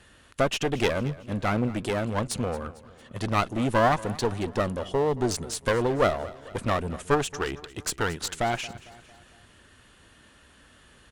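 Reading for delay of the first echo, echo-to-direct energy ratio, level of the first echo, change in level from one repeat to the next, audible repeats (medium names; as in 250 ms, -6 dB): 226 ms, -17.5 dB, -18.5 dB, -6.0 dB, 3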